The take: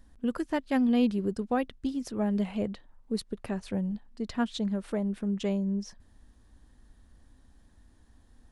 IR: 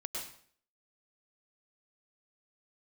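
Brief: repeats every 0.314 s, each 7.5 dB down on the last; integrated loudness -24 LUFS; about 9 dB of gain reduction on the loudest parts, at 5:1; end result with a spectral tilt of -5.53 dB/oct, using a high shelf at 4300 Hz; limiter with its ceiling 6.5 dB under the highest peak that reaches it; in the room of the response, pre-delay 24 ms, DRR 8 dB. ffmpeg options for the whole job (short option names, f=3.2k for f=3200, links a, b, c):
-filter_complex "[0:a]highshelf=f=4.3k:g=7,acompressor=threshold=-32dB:ratio=5,alimiter=level_in=4.5dB:limit=-24dB:level=0:latency=1,volume=-4.5dB,aecho=1:1:314|628|942|1256|1570:0.422|0.177|0.0744|0.0312|0.0131,asplit=2[a][b];[1:a]atrim=start_sample=2205,adelay=24[c];[b][c]afir=irnorm=-1:irlink=0,volume=-9dB[d];[a][d]amix=inputs=2:normalize=0,volume=13dB"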